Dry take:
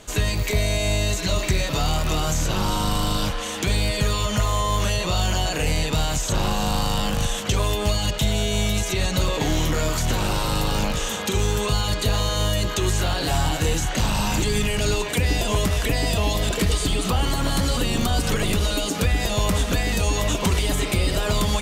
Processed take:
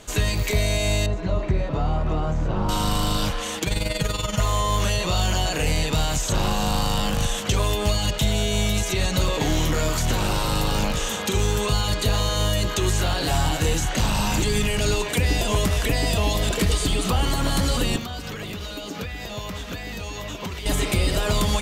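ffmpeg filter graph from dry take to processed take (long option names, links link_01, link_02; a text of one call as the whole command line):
ffmpeg -i in.wav -filter_complex "[0:a]asettb=1/sr,asplit=3[link_01][link_02][link_03];[link_01]atrim=end=1.064[link_04];[link_02]atrim=start=1.06:end=2.69,asetpts=PTS-STARTPTS,afade=type=in:duration=0.004:curve=qsin,afade=type=out:start_time=1.626:duration=0.004:curve=qsin,lowpass=1000,aemphasis=mode=production:type=75kf[link_05];[link_03]atrim=start=2.686[link_06];[link_04][link_05]acrossfade=duration=0.004:curve1=hsin:curve2=qsin[link_07];[link_07][link_06]acrossfade=duration=0.004:curve1=qsin:curve2=hsin,asettb=1/sr,asplit=3[link_08][link_09][link_10];[link_08]atrim=end=3.584[link_11];[link_09]atrim=start=3.58:end=4.4,asetpts=PTS-STARTPTS,afade=type=in:duration=0.004:curve=qsin,afade=type=out:start_time=0.816:duration=0.004:curve=qsin,tremolo=f=21:d=0.71,aecho=1:1:6.3:0.52,atrim=end_sample=36162[link_12];[link_10]atrim=start=4.396[link_13];[link_11][link_12]acrossfade=duration=0.004:curve1=hsin:curve2=qsin[link_14];[link_14][link_13]acrossfade=duration=0.004:curve1=qsin:curve2=hsin,asettb=1/sr,asplit=3[link_15][link_16][link_17];[link_15]atrim=end=17.964[link_18];[link_16]atrim=start=17.96:end=20.66,asetpts=PTS-STARTPTS,afade=type=in:duration=0.004:curve=qsin,afade=type=out:start_time=2.696:duration=0.004:curve=qsin,equalizer=frequency=9400:width_type=o:width=0.84:gain=-14,acrossover=split=1200|7700[link_19][link_20][link_21];[link_19]acompressor=threshold=-31dB:ratio=4[link_22];[link_20]acompressor=threshold=-37dB:ratio=4[link_23];[link_21]acompressor=threshold=-48dB:ratio=4[link_24];[link_22][link_23][link_24]amix=inputs=3:normalize=0,highpass=58[link_25];[link_17]atrim=start=20.656[link_26];[link_18][link_25]acrossfade=duration=0.004:curve1=hsin:curve2=qsin[link_27];[link_27][link_26]acrossfade=duration=0.004:curve1=qsin:curve2=hsin" out.wav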